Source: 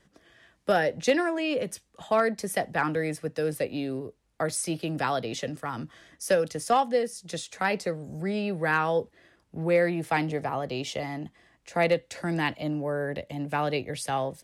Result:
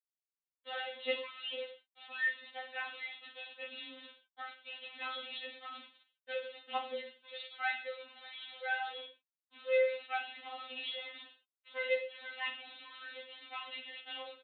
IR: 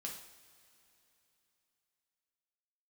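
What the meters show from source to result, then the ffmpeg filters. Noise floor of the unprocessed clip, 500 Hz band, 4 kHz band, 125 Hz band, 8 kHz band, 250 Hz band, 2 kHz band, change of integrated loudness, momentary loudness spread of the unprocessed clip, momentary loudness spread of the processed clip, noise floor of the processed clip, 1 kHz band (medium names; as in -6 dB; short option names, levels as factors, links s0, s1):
-68 dBFS, -12.5 dB, -3.0 dB, under -40 dB, under -40 dB, -30.5 dB, -6.5 dB, -11.0 dB, 11 LU, 14 LU, under -85 dBFS, -14.0 dB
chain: -filter_complex "[0:a]bandreject=f=60:t=h:w=6,bandreject=f=120:t=h:w=6,asplit=2[s0][s1];[s1]adelay=17,volume=0.562[s2];[s0][s2]amix=inputs=2:normalize=0,aresample=8000,acrusher=bits=6:mix=0:aa=0.000001,aresample=44100,aderivative,asplit=2[s3][s4];[1:a]atrim=start_sample=2205,afade=t=out:st=0.17:d=0.01,atrim=end_sample=7938,adelay=37[s5];[s4][s5]afir=irnorm=-1:irlink=0,volume=0.631[s6];[s3][s6]amix=inputs=2:normalize=0,afftfilt=real='re*3.46*eq(mod(b,12),0)':imag='im*3.46*eq(mod(b,12),0)':win_size=2048:overlap=0.75,volume=1.68"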